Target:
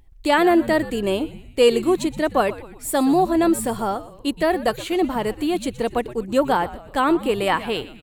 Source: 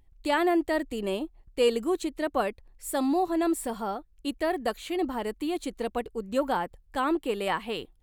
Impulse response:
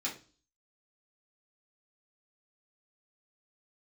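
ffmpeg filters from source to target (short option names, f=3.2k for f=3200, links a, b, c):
-filter_complex "[0:a]asplit=5[a][b][c][d][e];[b]adelay=121,afreqshift=-110,volume=-16dB[f];[c]adelay=242,afreqshift=-220,volume=-22dB[g];[d]adelay=363,afreqshift=-330,volume=-28dB[h];[e]adelay=484,afreqshift=-440,volume=-34.1dB[i];[a][f][g][h][i]amix=inputs=5:normalize=0,volume=8dB"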